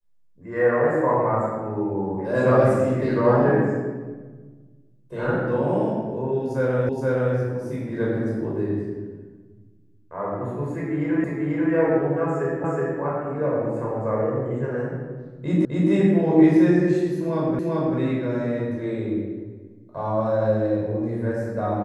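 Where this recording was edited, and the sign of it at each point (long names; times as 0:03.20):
0:06.89: the same again, the last 0.47 s
0:11.24: the same again, the last 0.49 s
0:12.64: the same again, the last 0.37 s
0:15.65: the same again, the last 0.26 s
0:17.59: the same again, the last 0.39 s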